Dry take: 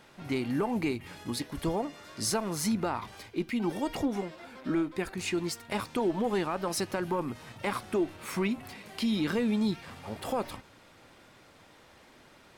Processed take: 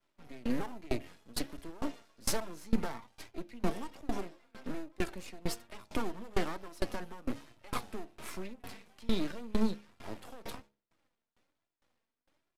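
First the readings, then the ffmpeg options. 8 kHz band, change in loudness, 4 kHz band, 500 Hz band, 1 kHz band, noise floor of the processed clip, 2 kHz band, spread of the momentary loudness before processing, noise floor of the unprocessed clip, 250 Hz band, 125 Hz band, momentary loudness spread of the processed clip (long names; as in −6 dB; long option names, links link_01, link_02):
−6.5 dB, −7.5 dB, −6.0 dB, −8.0 dB, −7.5 dB, below −85 dBFS, −7.0 dB, 9 LU, −57 dBFS, −7.5 dB, −6.5 dB, 12 LU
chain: -filter_complex "[0:a]agate=range=-33dB:threshold=-44dB:ratio=3:detection=peak,asplit=2[link_01][link_02];[link_02]acrusher=samples=20:mix=1:aa=0.000001,volume=-11dB[link_03];[link_01][link_03]amix=inputs=2:normalize=0,aeval=exprs='max(val(0),0)':channel_layout=same,flanger=delay=2.9:depth=1.6:regen=50:speed=1.2:shape=sinusoidal,acrossover=split=200|4100[link_04][link_05][link_06];[link_05]asoftclip=type=hard:threshold=-33dB[link_07];[link_04][link_07][link_06]amix=inputs=3:normalize=0,bandreject=frequency=69.41:width_type=h:width=4,bandreject=frequency=138.82:width_type=h:width=4,bandreject=frequency=208.23:width_type=h:width=4,bandreject=frequency=277.64:width_type=h:width=4,bandreject=frequency=347.05:width_type=h:width=4,bandreject=frequency=416.46:width_type=h:width=4,bandreject=frequency=485.87:width_type=h:width=4,bandreject=frequency=555.28:width_type=h:width=4,bandreject=frequency=624.69:width_type=h:width=4,bandreject=frequency=694.1:width_type=h:width=4,bandreject=frequency=763.51:width_type=h:width=4,bandreject=frequency=832.92:width_type=h:width=4,bandreject=frequency=902.33:width_type=h:width=4,aresample=32000,aresample=44100,aeval=exprs='val(0)*pow(10,-26*if(lt(mod(2.2*n/s,1),2*abs(2.2)/1000),1-mod(2.2*n/s,1)/(2*abs(2.2)/1000),(mod(2.2*n/s,1)-2*abs(2.2)/1000)/(1-2*abs(2.2)/1000))/20)':channel_layout=same,volume=8.5dB"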